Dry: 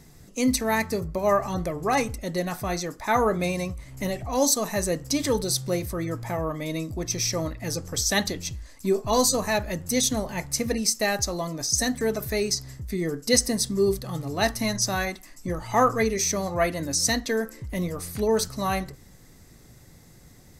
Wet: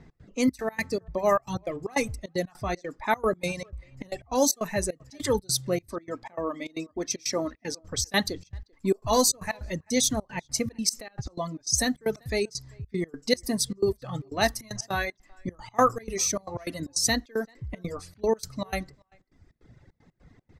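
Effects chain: reverb removal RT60 1.4 s; 5.87–7.82 resonant low shelf 170 Hz -13 dB, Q 1.5; 10.89–11.38 negative-ratio compressor -35 dBFS, ratio -1; low-pass opened by the level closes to 2300 Hz, open at -21.5 dBFS; step gate "x.xxx.x.x" 153 bpm -24 dB; speakerphone echo 0.39 s, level -29 dB

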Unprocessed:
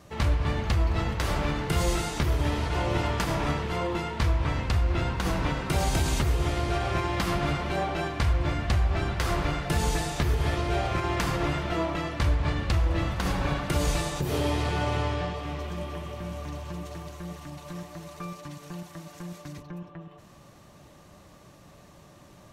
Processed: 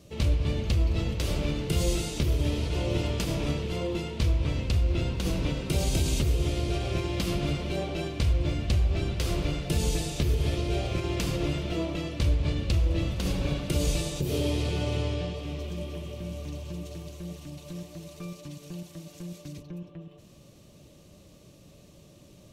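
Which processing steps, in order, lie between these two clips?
band shelf 1200 Hz -12 dB

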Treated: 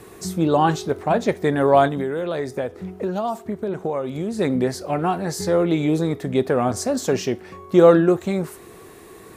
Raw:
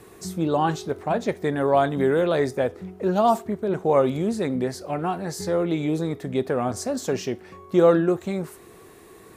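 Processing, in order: 1.87–4.39 compressor 6:1, threshold -27 dBFS, peak gain reduction 13 dB; gain +4.5 dB

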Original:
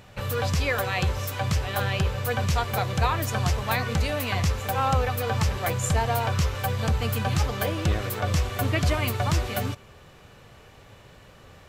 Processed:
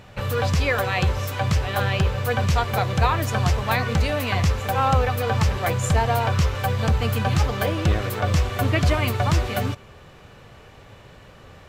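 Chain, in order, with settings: high shelf 5600 Hz -6.5 dB; short-mantissa float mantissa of 6-bit; gain +4 dB

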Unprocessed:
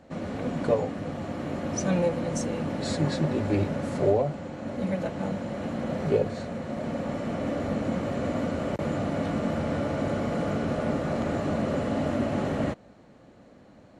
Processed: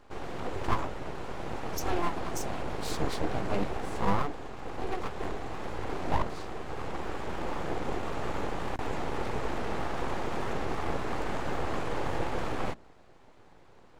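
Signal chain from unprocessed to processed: de-hum 56.85 Hz, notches 3; full-wave rectifier; gain -1.5 dB

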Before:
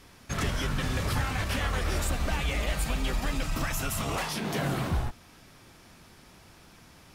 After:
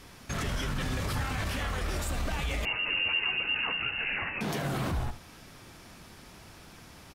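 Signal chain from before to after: limiter -27 dBFS, peak gain reduction 8 dB; on a send: echo 70 ms -13.5 dB; 2.65–4.41 on the sum: inverted band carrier 2800 Hz; gain +3 dB

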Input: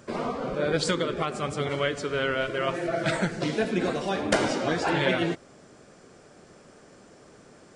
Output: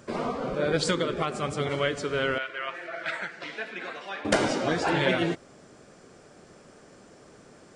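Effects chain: 2.38–4.25 band-pass 1900 Hz, Q 1.2

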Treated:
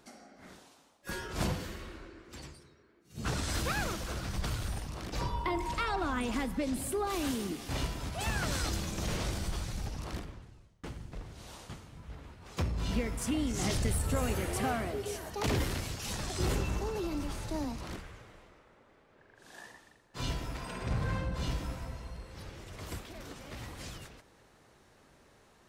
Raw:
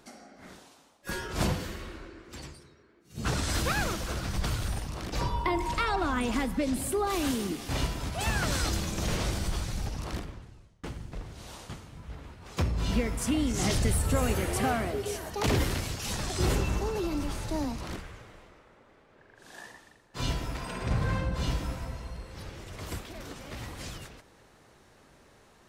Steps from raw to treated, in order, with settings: one diode to ground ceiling -14.5 dBFS; gain -3.5 dB

